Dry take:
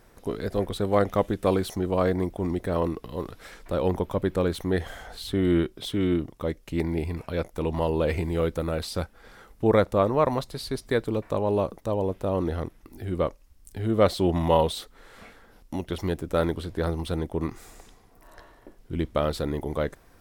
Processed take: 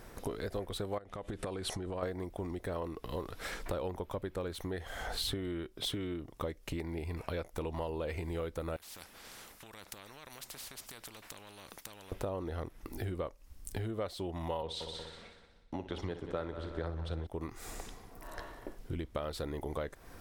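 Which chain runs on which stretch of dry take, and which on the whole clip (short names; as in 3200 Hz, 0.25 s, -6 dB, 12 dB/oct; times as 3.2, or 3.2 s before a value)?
0.98–2.03 LPF 10000 Hz 24 dB/oct + bell 6100 Hz -4.5 dB 0.59 oct + compressor 20:1, threshold -32 dBFS
8.76–12.12 compressor 10:1, threshold -31 dBFS + overloaded stage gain 25 dB + spectral compressor 4:1
14.62–17.27 air absorption 97 m + multi-head echo 61 ms, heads first and third, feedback 64%, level -12 dB + three-band expander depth 70%
whole clip: compressor 16:1, threshold -36 dBFS; dynamic EQ 190 Hz, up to -6 dB, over -52 dBFS, Q 0.8; gain +4.5 dB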